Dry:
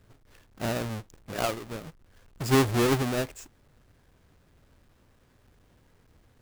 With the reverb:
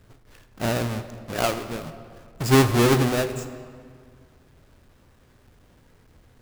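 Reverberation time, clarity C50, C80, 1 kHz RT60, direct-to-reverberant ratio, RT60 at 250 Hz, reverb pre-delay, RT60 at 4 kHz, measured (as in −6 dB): 2.0 s, 11.0 dB, 12.0 dB, 1.9 s, 10.0 dB, 2.3 s, 16 ms, 1.4 s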